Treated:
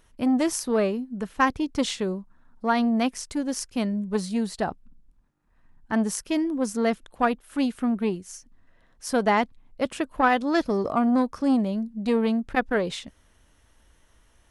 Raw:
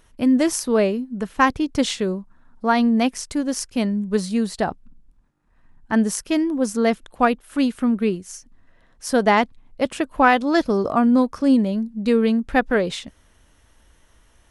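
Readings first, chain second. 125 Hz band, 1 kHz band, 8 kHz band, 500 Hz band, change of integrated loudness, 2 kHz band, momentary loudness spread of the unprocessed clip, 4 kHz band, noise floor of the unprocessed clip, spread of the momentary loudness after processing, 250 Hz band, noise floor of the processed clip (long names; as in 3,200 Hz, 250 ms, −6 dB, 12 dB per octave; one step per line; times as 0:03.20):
−4.5 dB, −4.5 dB, −4.0 dB, −5.0 dB, −5.0 dB, −5.0 dB, 9 LU, −4.5 dB, −57 dBFS, 9 LU, −5.0 dB, −61 dBFS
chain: saturating transformer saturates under 600 Hz
level −4 dB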